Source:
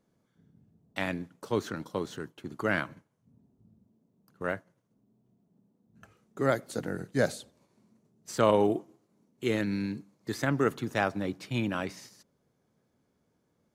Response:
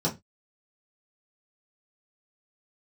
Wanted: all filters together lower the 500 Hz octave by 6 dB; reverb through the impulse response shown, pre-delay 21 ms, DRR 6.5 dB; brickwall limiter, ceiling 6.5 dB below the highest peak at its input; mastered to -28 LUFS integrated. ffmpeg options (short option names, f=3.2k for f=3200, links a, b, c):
-filter_complex "[0:a]equalizer=f=500:t=o:g=-7.5,alimiter=limit=-20dB:level=0:latency=1,asplit=2[a][b];[1:a]atrim=start_sample=2205,adelay=21[c];[b][c]afir=irnorm=-1:irlink=0,volume=-16dB[d];[a][d]amix=inputs=2:normalize=0,volume=5dB"